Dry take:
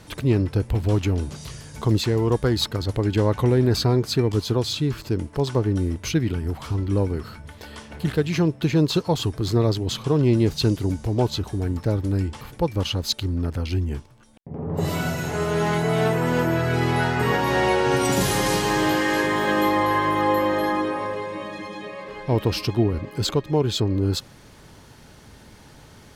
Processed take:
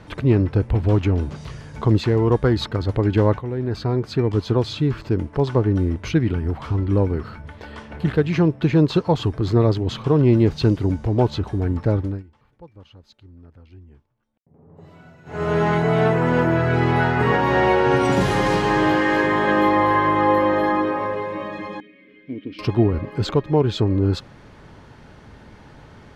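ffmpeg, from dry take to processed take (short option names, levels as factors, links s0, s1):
-filter_complex "[0:a]asettb=1/sr,asplit=3[s0][s1][s2];[s0]atrim=end=21.804[s3];[s1]atrim=start=21.8:end=22.59,asetpts=PTS-STARTPTS,afade=t=in:d=0.004:c=qsin,afade=t=out:st=0.786:d=0.004:c=qsin,asplit=3[s4][s5][s6];[s4]bandpass=f=270:t=q:w=8,volume=1[s7];[s5]bandpass=f=2290:t=q:w=8,volume=0.501[s8];[s6]bandpass=f=3010:t=q:w=8,volume=0.355[s9];[s7][s8][s9]amix=inputs=3:normalize=0[s10];[s2]atrim=start=22.586[s11];[s3][s10]acrossfade=d=0.004:c1=hsin:c2=qsin[s12];[s12][s11]acrossfade=d=0.004:c1=qsin:c2=hsin,asplit=4[s13][s14][s15][s16];[s13]atrim=end=3.39,asetpts=PTS-STARTPTS,afade=t=out:st=3.386:d=0.004:c=hsin:silence=0.188365[s17];[s14]atrim=start=3.39:end=12.23,asetpts=PTS-STARTPTS,afade=t=in:d=1.18:silence=0.188365,afade=t=out:st=8.59:d=0.25:silence=0.0630957[s18];[s15]atrim=start=12.23:end=15.25,asetpts=PTS-STARTPTS,volume=0.0631[s19];[s16]atrim=start=15.25,asetpts=PTS-STARTPTS,afade=t=in:d=0.25:silence=0.0630957[s20];[s17][s18][s19][s20]concat=n=4:v=0:a=1,lowpass=1800,aemphasis=mode=production:type=75fm,volume=1.58"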